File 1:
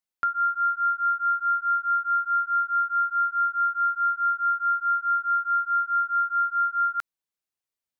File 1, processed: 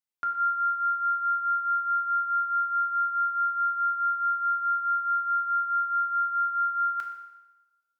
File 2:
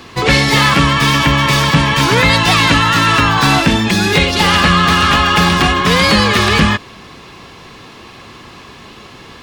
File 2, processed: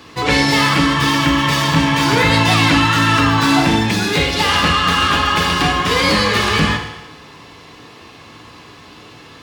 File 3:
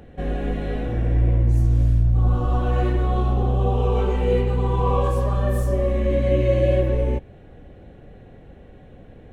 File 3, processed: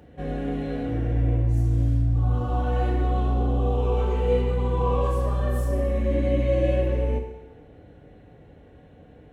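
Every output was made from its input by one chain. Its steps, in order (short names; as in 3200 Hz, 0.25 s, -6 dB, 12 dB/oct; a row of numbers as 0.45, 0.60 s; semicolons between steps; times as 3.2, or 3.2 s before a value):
HPF 52 Hz; FDN reverb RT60 1.1 s, low-frequency decay 0.75×, high-frequency decay 0.9×, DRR 2 dB; gain -5.5 dB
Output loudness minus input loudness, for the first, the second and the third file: -2.0, -3.0, -3.0 LU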